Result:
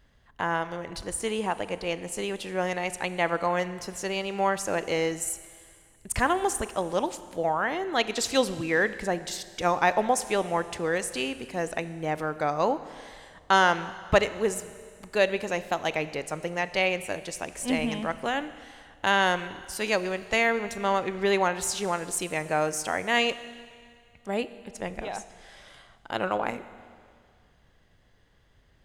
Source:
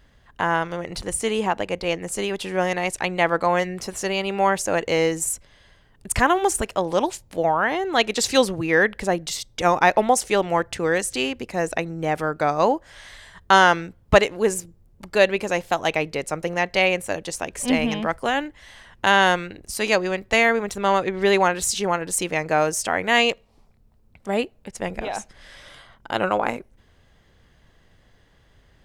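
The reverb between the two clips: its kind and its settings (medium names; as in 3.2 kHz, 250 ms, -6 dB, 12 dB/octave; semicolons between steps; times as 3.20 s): Schroeder reverb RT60 2.1 s, combs from 26 ms, DRR 13.5 dB; trim -6 dB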